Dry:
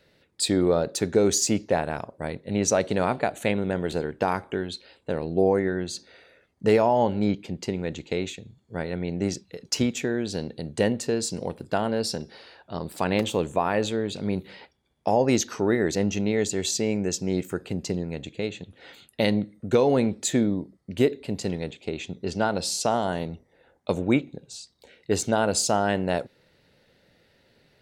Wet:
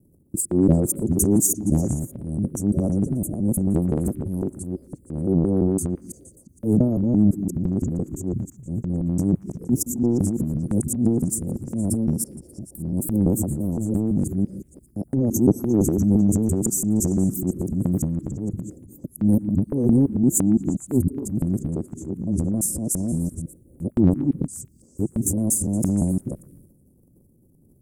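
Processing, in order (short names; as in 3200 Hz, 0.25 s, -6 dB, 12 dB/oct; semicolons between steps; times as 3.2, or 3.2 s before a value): local time reversal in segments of 0.17 s; inverse Chebyshev band-stop 1000–4100 Hz, stop band 60 dB; bell 450 Hz -11.5 dB 0.36 oct; transient shaper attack -6 dB, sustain +11 dB; on a send: delay with a stepping band-pass 0.117 s, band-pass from 1700 Hz, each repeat 0.7 oct, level -8 dB; on the sum: gain +8.5 dB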